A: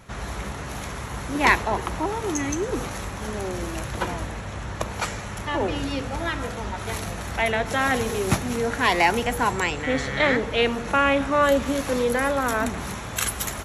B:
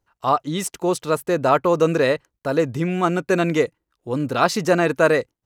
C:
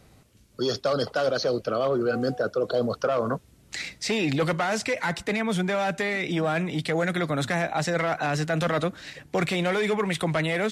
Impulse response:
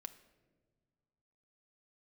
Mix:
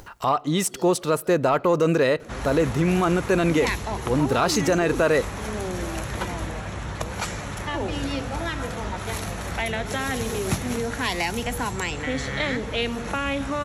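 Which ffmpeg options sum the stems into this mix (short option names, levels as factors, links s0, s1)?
-filter_complex "[0:a]acrossover=split=240|3000[s0][s1][s2];[s1]acompressor=threshold=0.0398:ratio=4[s3];[s0][s3][s2]amix=inputs=3:normalize=0,adelay=2200,volume=1.06[s4];[1:a]acompressor=mode=upward:threshold=0.0398:ratio=2.5,asoftclip=type=tanh:threshold=0.501,volume=1.12,asplit=3[s5][s6][s7];[s6]volume=0.335[s8];[2:a]adelay=100,volume=0.168[s9];[s7]apad=whole_len=476861[s10];[s9][s10]sidechaincompress=threshold=0.0224:ratio=8:attack=16:release=163[s11];[3:a]atrim=start_sample=2205[s12];[s8][s12]afir=irnorm=-1:irlink=0[s13];[s4][s5][s11][s13]amix=inputs=4:normalize=0,alimiter=limit=0.251:level=0:latency=1:release=47"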